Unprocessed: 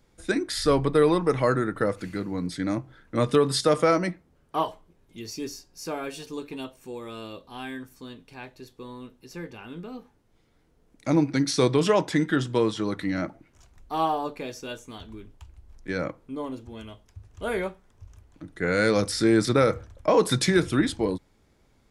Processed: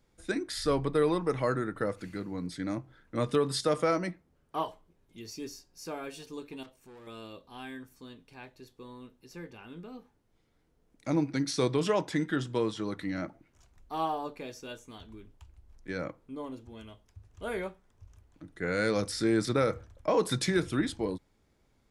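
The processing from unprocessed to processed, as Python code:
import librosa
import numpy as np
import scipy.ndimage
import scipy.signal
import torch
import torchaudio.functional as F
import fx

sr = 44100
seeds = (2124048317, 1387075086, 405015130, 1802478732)

y = fx.tube_stage(x, sr, drive_db=42.0, bias=0.55, at=(6.63, 7.07))
y = y * 10.0 ** (-6.5 / 20.0)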